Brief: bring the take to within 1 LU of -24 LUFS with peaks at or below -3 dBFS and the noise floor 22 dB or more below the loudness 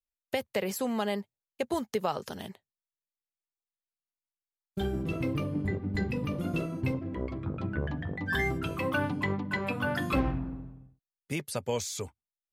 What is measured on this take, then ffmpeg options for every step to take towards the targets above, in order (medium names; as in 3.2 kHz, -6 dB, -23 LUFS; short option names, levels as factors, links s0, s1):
loudness -32.5 LUFS; peak level -16.0 dBFS; loudness target -24.0 LUFS
-> -af "volume=2.66"